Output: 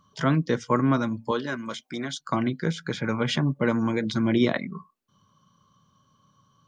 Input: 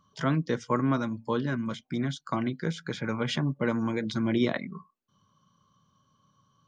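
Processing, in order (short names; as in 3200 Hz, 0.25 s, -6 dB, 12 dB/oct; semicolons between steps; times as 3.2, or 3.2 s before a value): 1.31–2.2 tone controls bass -14 dB, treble +5 dB; gain +4 dB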